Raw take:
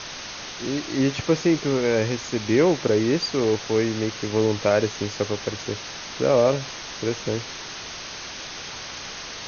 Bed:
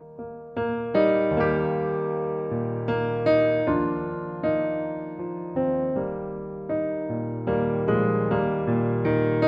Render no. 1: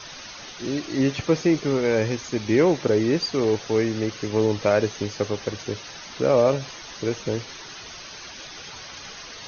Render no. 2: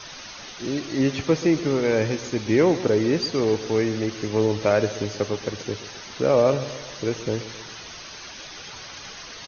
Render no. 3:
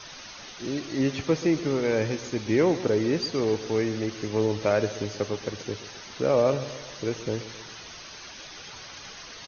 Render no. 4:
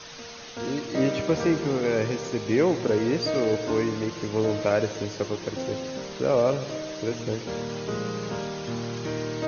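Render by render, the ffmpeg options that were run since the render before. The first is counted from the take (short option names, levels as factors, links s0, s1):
-af "afftdn=nr=9:nf=-36"
-af "aecho=1:1:131|262|393|524|655:0.188|0.102|0.0549|0.0297|0.016"
-af "volume=0.668"
-filter_complex "[1:a]volume=0.376[s0];[0:a][s0]amix=inputs=2:normalize=0"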